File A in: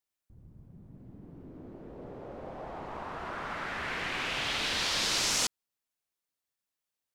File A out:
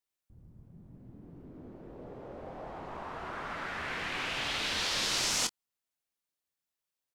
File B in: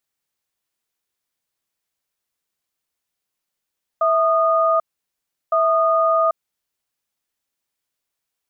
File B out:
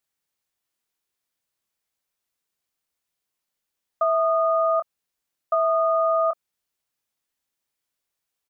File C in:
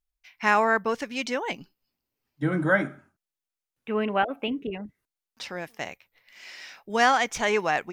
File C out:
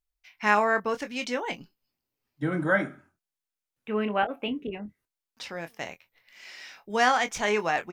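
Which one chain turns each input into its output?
double-tracking delay 24 ms −10 dB
level −2 dB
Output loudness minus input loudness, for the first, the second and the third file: −1.5, −4.0, −1.5 LU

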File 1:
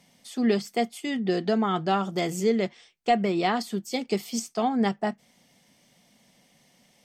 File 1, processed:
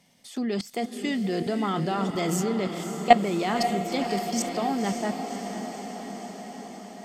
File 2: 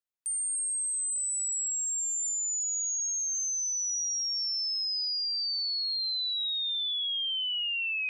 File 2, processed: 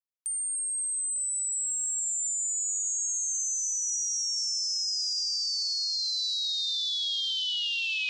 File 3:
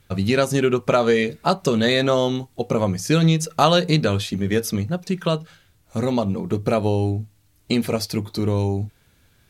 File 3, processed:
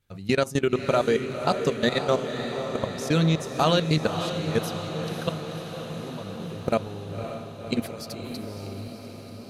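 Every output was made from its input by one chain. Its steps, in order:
output level in coarse steps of 18 dB
feedback delay with all-pass diffusion 539 ms, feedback 70%, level −8 dB
loudness normalisation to −27 LKFS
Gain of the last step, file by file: +9.0, +4.5, −2.0 decibels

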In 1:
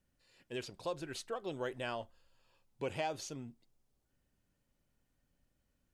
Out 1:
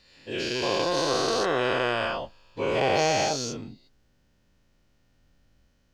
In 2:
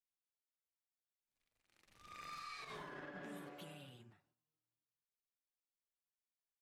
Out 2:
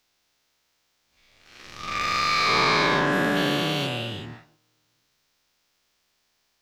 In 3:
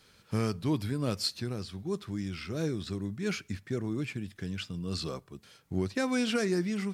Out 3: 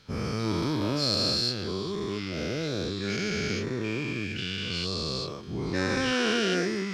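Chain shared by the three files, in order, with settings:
every bin's largest magnitude spread in time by 480 ms
high shelf with overshoot 7,100 Hz −8.5 dB, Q 1.5
normalise the peak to −9 dBFS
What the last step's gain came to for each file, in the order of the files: +6.0, +21.5, −4.0 decibels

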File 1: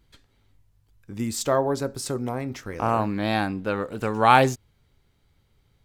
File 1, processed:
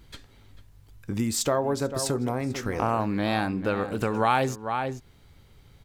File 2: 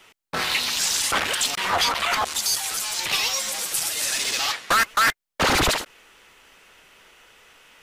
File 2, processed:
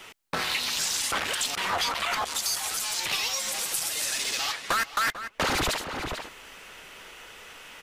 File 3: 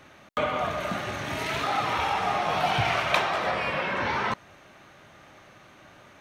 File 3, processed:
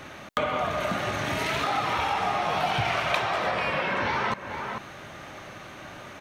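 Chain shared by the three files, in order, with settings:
slap from a distant wall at 76 metres, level −14 dB
downward compressor 2.5 to 1, threshold −38 dBFS
loudness normalisation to −27 LKFS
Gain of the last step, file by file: +10.0, +6.5, +9.5 decibels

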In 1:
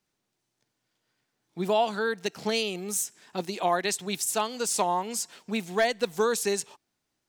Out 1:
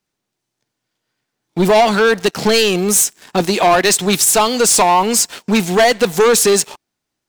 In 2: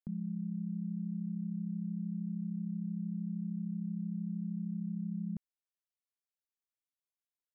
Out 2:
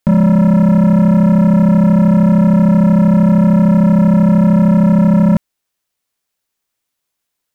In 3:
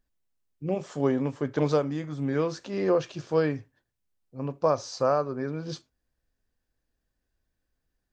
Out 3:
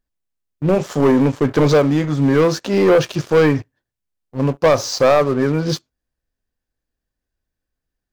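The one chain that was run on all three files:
leveller curve on the samples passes 3
normalise the peak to −6 dBFS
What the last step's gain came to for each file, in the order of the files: +8.5, +25.0, +4.0 decibels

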